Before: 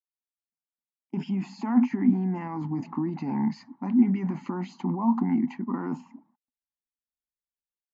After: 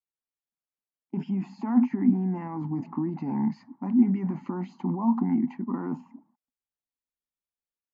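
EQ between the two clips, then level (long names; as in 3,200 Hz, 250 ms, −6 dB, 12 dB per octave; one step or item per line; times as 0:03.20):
high-shelf EQ 2,100 Hz −11.5 dB
0.0 dB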